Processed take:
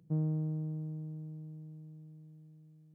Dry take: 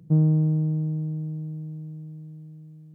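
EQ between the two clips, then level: low shelf 320 Hz -6.5 dB; -8.0 dB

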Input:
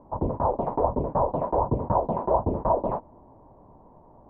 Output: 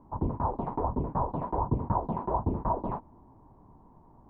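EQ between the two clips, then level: bell 570 Hz -12.5 dB 0.81 oct; -1.0 dB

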